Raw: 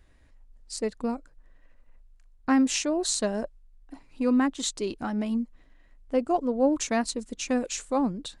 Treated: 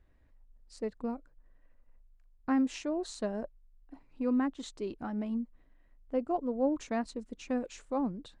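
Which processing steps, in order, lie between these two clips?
LPF 1500 Hz 6 dB/oct; gain -6 dB

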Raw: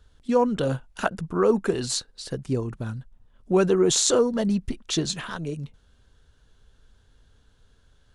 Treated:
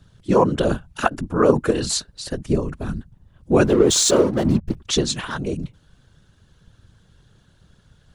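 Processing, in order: 3.64–4.77 backlash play -29 dBFS; whisperiser; gain +5 dB

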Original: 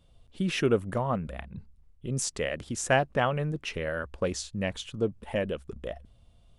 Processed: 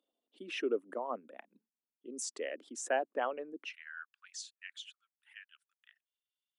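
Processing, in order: formant sharpening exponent 1.5; steep high-pass 260 Hz 48 dB/oct, from 3.64 s 1400 Hz; gain -8 dB

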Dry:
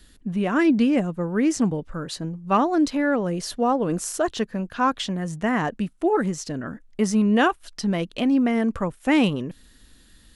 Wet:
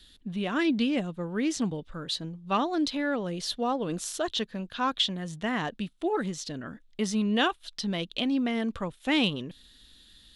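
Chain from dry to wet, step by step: bell 3600 Hz +15 dB 0.78 oct; gain -7.5 dB

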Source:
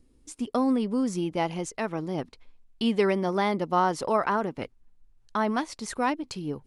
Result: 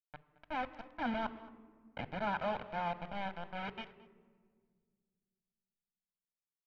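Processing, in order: whole clip reversed; Doppler pass-by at 1.49, 12 m/s, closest 1.6 m; treble ducked by the level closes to 960 Hz, closed at -30.5 dBFS; negative-ratio compressor -38 dBFS, ratio -1; bit-crush 7-bit; LPF 3000 Hz 24 dB/oct; notches 50/100/150 Hz; echo 0.221 s -19.5 dB; reverb RT60 1.8 s, pre-delay 16 ms, DRR 15 dB; mismatched tape noise reduction decoder only; gain +2 dB

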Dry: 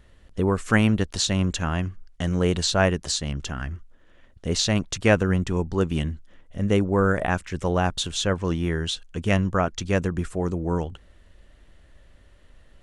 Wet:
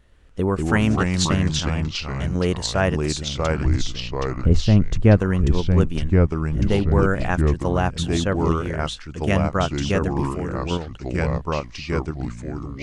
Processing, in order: 3.65–5.17 tilt -4 dB/oct; in parallel at +1 dB: level quantiser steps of 23 dB; on the sum: echoes that change speed 0.119 s, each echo -3 st, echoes 2; gain -4.5 dB

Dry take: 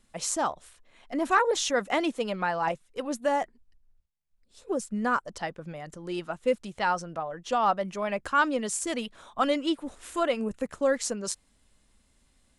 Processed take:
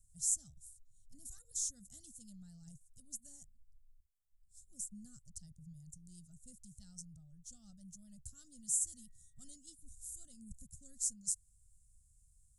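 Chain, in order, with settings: 8.68–9.48 whine 1900 Hz -40 dBFS; elliptic band-stop 120–7300 Hz, stop band 50 dB

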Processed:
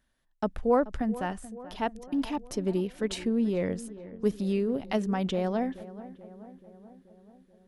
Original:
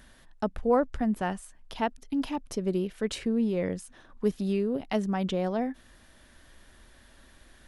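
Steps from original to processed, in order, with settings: gate -45 dBFS, range -20 dB; 1.02–1.86 resonator 150 Hz, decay 0.15 s, mix 30%; darkening echo 0.432 s, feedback 63%, low-pass 1700 Hz, level -16 dB

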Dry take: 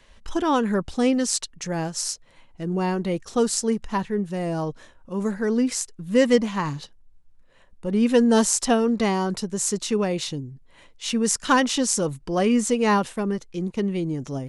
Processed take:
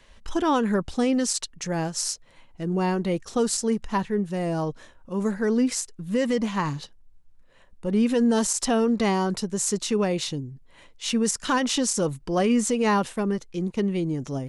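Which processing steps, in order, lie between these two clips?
limiter -14 dBFS, peak gain reduction 10.5 dB

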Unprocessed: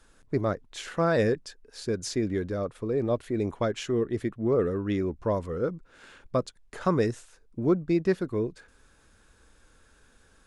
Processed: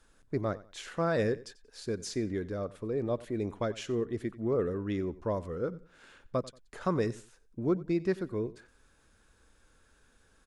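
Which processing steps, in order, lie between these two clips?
feedback echo 91 ms, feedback 27%, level -19 dB; gain -5 dB

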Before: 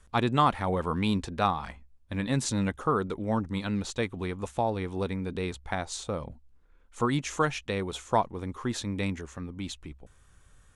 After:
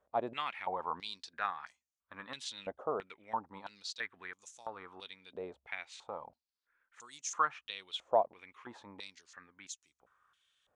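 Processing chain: stepped band-pass 3 Hz 630–6400 Hz; gain +2 dB

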